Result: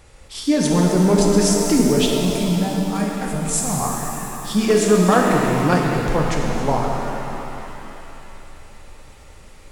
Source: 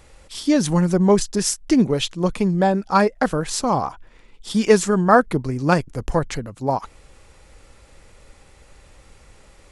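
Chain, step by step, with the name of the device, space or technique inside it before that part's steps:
clipper into limiter (hard clipping −7 dBFS, distortion −22 dB; brickwall limiter −10.5 dBFS, peak gain reduction 3.5 dB)
0:02.19–0:03.80: drawn EQ curve 180 Hz 0 dB, 380 Hz −18 dB, 710 Hz −8 dB, 1,000 Hz −14 dB, 2,500 Hz −3 dB, 4,700 Hz −10 dB, 7,300 Hz +6 dB
reverb with rising layers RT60 3.2 s, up +7 semitones, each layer −8 dB, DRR −1 dB

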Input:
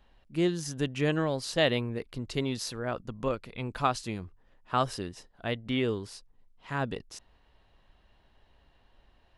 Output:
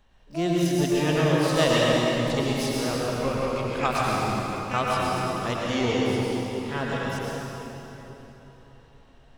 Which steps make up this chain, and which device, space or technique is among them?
shimmer-style reverb (pitch-shifted copies added +12 semitones −9 dB; convolution reverb RT60 3.8 s, pre-delay 93 ms, DRR −5 dB)

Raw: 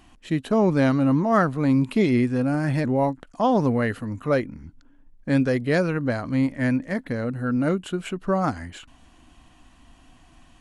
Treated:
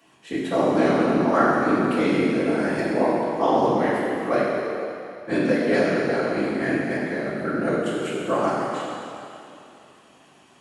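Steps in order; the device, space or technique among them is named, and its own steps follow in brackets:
whispering ghost (random phases in short frames; high-pass filter 280 Hz 12 dB per octave; convolution reverb RT60 2.8 s, pre-delay 3 ms, DRR −6 dB)
level −3.5 dB

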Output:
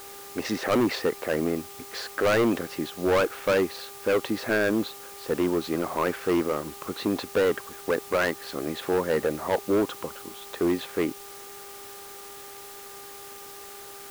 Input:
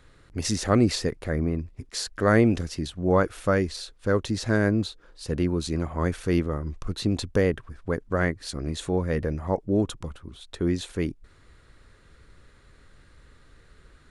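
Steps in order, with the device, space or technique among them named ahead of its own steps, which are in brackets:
aircraft radio (band-pass filter 370–2,300 Hz; hard clipping −25.5 dBFS, distortion −6 dB; hum with harmonics 400 Hz, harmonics 3, −55 dBFS −3 dB per octave; white noise bed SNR 17 dB)
level +7.5 dB

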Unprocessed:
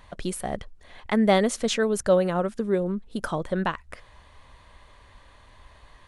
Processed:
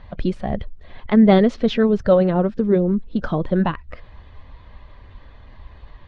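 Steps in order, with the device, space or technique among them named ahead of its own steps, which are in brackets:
clip after many re-uploads (low-pass filter 4,400 Hz 24 dB per octave; spectral magnitudes quantised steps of 15 dB)
0:01.54–0:02.30: low-pass filter 5,700 Hz 12 dB per octave
low-shelf EQ 410 Hz +11 dB
level +1 dB

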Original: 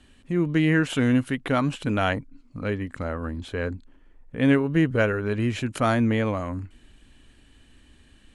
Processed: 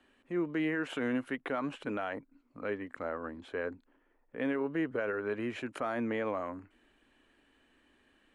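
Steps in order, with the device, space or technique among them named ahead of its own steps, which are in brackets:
DJ mixer with the lows and highs turned down (three-way crossover with the lows and the highs turned down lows −20 dB, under 280 Hz, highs −13 dB, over 2,400 Hz; brickwall limiter −20 dBFS, peak gain reduction 9.5 dB)
level −4 dB

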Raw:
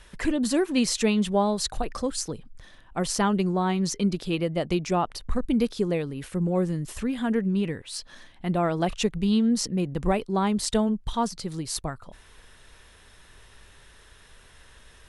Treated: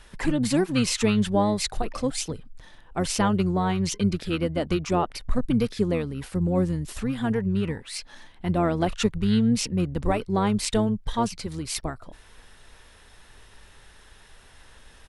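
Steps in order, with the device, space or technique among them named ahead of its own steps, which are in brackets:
octave pedal (pitch-shifted copies added −12 semitones −7 dB)

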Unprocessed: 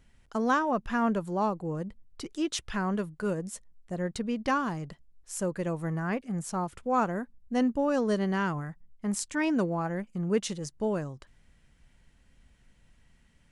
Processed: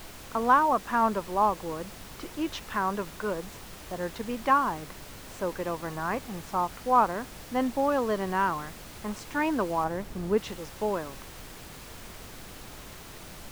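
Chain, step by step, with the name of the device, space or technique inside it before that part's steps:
horn gramophone (band-pass filter 260–3,500 Hz; parametric band 1,000 Hz +8.5 dB; tape wow and flutter; pink noise bed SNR 14 dB)
0:09.84–0:10.38: tilt shelving filter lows +4 dB, about 730 Hz

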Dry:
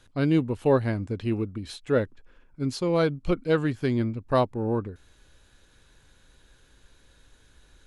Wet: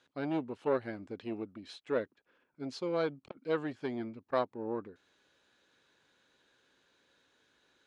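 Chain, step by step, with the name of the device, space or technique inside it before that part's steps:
public-address speaker with an overloaded transformer (saturating transformer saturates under 510 Hz; band-pass filter 260–5,300 Hz)
level −7 dB

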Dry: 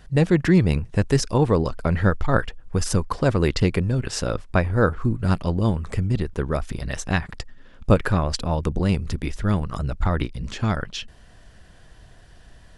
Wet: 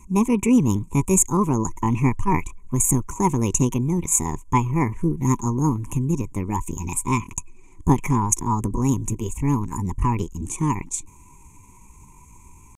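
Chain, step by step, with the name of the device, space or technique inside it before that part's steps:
drawn EQ curve 140 Hz 0 dB, 280 Hz +2 dB, 480 Hz −24 dB, 720 Hz +12 dB, 1,100 Hz −23 dB, 1,700 Hz −2 dB, 3,400 Hz −23 dB, 4,800 Hz +13 dB, 7,700 Hz +9 dB, 12,000 Hz −6 dB
chipmunk voice (pitch shifter +5.5 semitones)

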